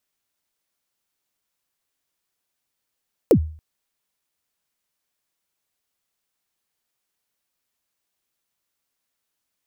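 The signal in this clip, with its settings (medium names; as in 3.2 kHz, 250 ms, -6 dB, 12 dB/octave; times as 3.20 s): kick drum length 0.28 s, from 550 Hz, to 78 Hz, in 80 ms, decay 0.45 s, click on, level -7 dB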